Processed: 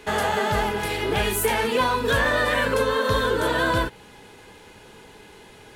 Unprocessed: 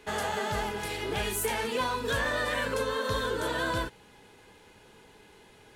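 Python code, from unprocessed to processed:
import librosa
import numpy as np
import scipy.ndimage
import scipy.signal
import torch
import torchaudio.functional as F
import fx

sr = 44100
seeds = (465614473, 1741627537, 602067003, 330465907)

y = fx.dynamic_eq(x, sr, hz=6700.0, q=0.83, threshold_db=-51.0, ratio=4.0, max_db=-5)
y = F.gain(torch.from_numpy(y), 8.5).numpy()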